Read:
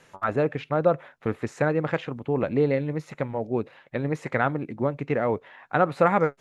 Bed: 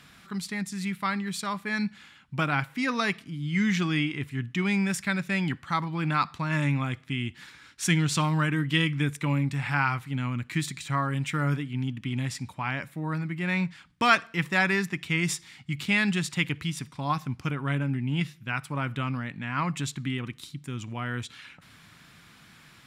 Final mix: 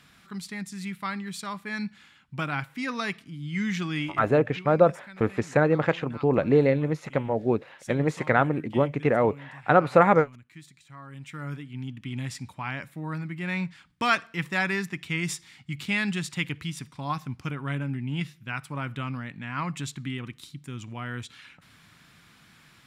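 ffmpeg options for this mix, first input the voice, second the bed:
-filter_complex "[0:a]adelay=3950,volume=2.5dB[a];[1:a]volume=13dB,afade=t=out:st=4.02:d=0.66:silence=0.16788,afade=t=in:st=10.96:d=1.33:silence=0.149624[b];[a][b]amix=inputs=2:normalize=0"

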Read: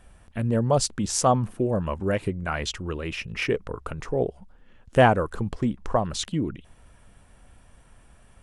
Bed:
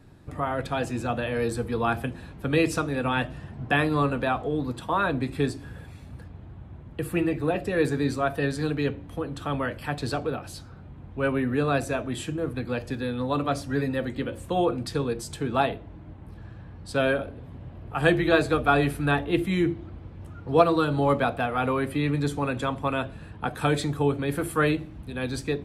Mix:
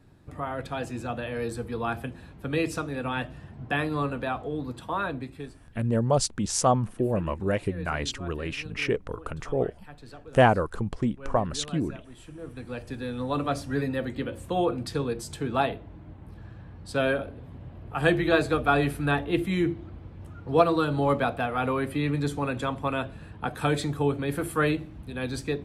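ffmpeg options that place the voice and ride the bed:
-filter_complex "[0:a]adelay=5400,volume=-1.5dB[a];[1:a]volume=11.5dB,afade=t=out:st=5.01:d=0.49:silence=0.223872,afade=t=in:st=12.18:d=1.23:silence=0.158489[b];[a][b]amix=inputs=2:normalize=0"

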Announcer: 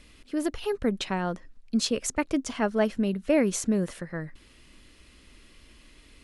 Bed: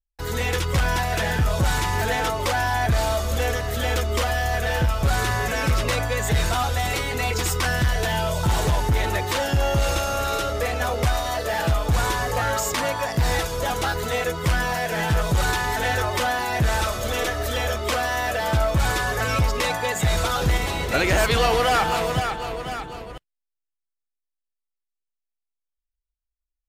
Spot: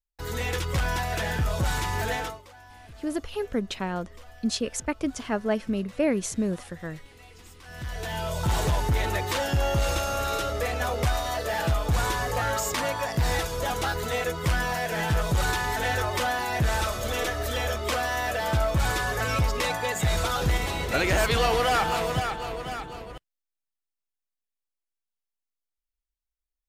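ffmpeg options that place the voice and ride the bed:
-filter_complex "[0:a]adelay=2700,volume=-1.5dB[a];[1:a]volume=18.5dB,afade=t=out:st=2.14:d=0.28:silence=0.0794328,afade=t=in:st=7.64:d=0.91:silence=0.0668344[b];[a][b]amix=inputs=2:normalize=0"

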